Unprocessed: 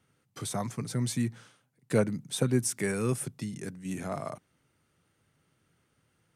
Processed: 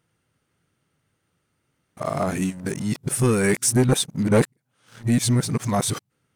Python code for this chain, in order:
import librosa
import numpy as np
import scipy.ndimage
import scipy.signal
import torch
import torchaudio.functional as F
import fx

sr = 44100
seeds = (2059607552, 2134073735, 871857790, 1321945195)

y = x[::-1].copy()
y = fx.leveller(y, sr, passes=2)
y = y * 10.0 ** (3.5 / 20.0)